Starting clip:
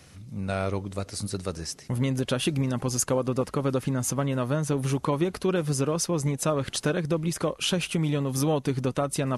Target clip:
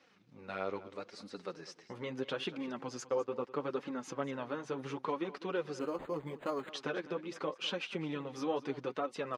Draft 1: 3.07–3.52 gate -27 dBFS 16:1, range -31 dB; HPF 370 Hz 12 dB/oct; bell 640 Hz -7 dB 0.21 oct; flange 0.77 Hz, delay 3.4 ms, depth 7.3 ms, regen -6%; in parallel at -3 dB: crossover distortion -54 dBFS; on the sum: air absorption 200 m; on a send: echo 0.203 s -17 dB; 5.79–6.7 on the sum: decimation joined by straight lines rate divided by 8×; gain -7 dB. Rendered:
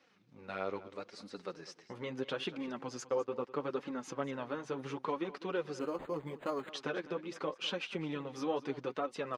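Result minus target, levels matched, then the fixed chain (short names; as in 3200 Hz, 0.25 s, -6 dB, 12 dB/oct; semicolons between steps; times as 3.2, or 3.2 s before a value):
crossover distortion: distortion +8 dB
3.07–3.52 gate -27 dBFS 16:1, range -31 dB; HPF 370 Hz 12 dB/oct; bell 640 Hz -7 dB 0.21 oct; flange 0.77 Hz, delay 3.4 ms, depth 7.3 ms, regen -6%; in parallel at -3 dB: crossover distortion -63 dBFS; on the sum: air absorption 200 m; on a send: echo 0.203 s -17 dB; 5.79–6.7 on the sum: decimation joined by straight lines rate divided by 8×; gain -7 dB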